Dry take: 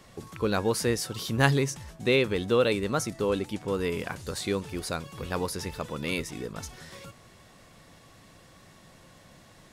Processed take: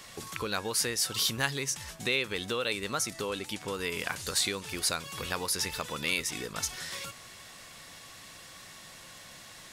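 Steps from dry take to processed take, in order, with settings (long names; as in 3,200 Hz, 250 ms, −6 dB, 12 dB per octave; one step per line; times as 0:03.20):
downward compressor 3 to 1, threshold −33 dBFS, peak gain reduction 13 dB
tilt shelving filter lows −7.5 dB
level +3.5 dB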